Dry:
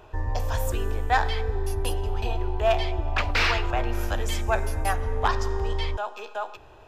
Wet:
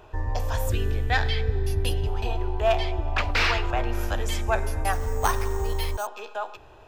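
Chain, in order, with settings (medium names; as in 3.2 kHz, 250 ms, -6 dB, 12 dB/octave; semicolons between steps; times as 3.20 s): 0.69–2.07 s: graphic EQ 125/1000/2000/4000/8000 Hz +12/-10/+4/+5/-4 dB; 4.93–6.07 s: careless resampling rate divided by 6×, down none, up hold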